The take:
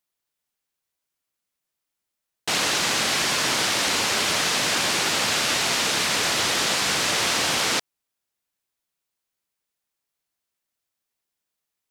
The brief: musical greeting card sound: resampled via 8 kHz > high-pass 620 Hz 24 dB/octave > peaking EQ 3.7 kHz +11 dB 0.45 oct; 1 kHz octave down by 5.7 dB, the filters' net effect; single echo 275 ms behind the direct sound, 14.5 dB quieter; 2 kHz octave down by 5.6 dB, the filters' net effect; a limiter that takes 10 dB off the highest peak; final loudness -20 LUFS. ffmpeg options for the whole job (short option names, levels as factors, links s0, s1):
-af "equalizer=f=1000:t=o:g=-5,equalizer=f=2000:t=o:g=-7.5,alimiter=limit=0.075:level=0:latency=1,aecho=1:1:275:0.188,aresample=8000,aresample=44100,highpass=f=620:w=0.5412,highpass=f=620:w=1.3066,equalizer=f=3700:t=o:w=0.45:g=11,volume=2.99"